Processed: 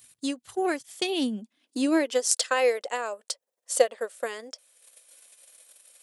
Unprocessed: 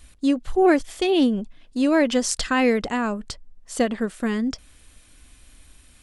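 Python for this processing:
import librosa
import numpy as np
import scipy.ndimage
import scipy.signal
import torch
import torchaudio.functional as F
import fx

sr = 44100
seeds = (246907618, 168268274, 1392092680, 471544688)

y = fx.transient(x, sr, attack_db=5, sustain_db=-7)
y = fx.riaa(y, sr, side='recording')
y = fx.filter_sweep_highpass(y, sr, from_hz=120.0, to_hz=530.0, start_s=0.68, end_s=2.47, q=4.6)
y = y * librosa.db_to_amplitude(-9.0)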